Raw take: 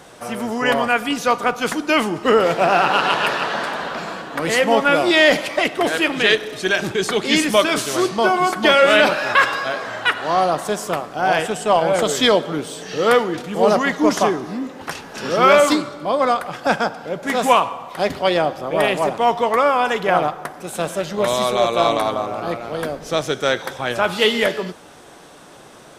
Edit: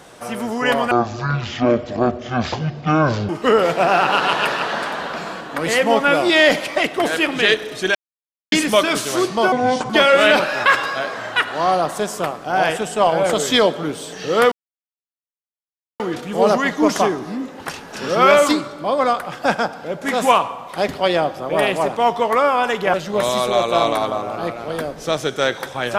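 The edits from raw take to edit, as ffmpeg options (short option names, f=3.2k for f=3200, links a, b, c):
-filter_complex "[0:a]asplit=9[a][b][c][d][e][f][g][h][i];[a]atrim=end=0.914[j];[b]atrim=start=0.91:end=2.1,asetpts=PTS-STARTPTS,asetrate=22050,aresample=44100[k];[c]atrim=start=2.096:end=6.76,asetpts=PTS-STARTPTS,afade=t=out:st=4.66:d=0.004:c=hsin[l];[d]atrim=start=6.76:end=7.33,asetpts=PTS-STARTPTS,volume=0[m];[e]atrim=start=7.33:end=8.334,asetpts=PTS-STARTPTS,afade=t=in:d=0.004:c=hsin[n];[f]atrim=start=8.33:end=8.59,asetpts=PTS-STARTPTS,asetrate=30429,aresample=44100,atrim=end_sample=16617,asetpts=PTS-STARTPTS[o];[g]atrim=start=8.586:end=13.21,asetpts=PTS-STARTPTS,afade=t=out:st=4.62:d=0.004:c=hsin,apad=pad_dur=1.48[p];[h]atrim=start=13.21:end=20.152,asetpts=PTS-STARTPTS,afade=t=in:d=0.004:c=hsin[q];[i]atrim=start=20.978[r];[j][k]acrossfade=d=0.004:c1=hsin:c2=hsin[s];[l][m][n]concat=n=3:v=0:a=1[t];[s][t]acrossfade=d=0.004:c1=hsin:c2=hsin[u];[u][o]acrossfade=d=0.004:c1=hsin:c2=hsin[v];[p][q]concat=n=2:v=0:a=1[w];[v][w]acrossfade=d=0.004:c1=hsin:c2=hsin[x];[x][r]acrossfade=d=0.004:c1=hsin:c2=hsin"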